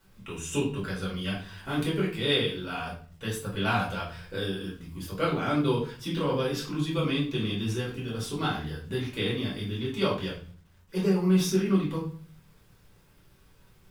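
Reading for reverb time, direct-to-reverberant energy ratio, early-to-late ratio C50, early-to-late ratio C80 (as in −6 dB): 0.45 s, −6.5 dB, 6.5 dB, 10.5 dB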